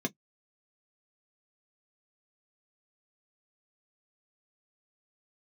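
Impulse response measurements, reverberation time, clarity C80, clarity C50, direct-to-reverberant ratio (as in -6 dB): no single decay rate, 55.0 dB, 39.0 dB, 2.0 dB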